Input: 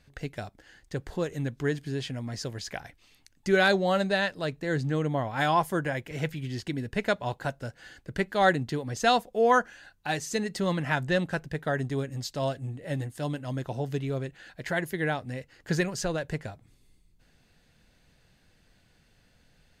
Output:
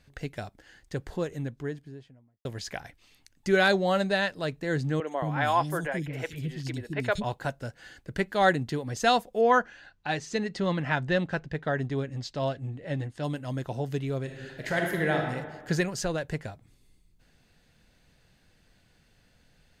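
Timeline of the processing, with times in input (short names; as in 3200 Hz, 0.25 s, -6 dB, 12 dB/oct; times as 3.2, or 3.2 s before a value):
0.95–2.45 studio fade out
5–7.24 three bands offset in time mids, highs, lows 70/220 ms, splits 330/3600 Hz
9.41–13.24 LPF 4900 Hz
14.23–15.27 reverb throw, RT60 1.4 s, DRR 0.5 dB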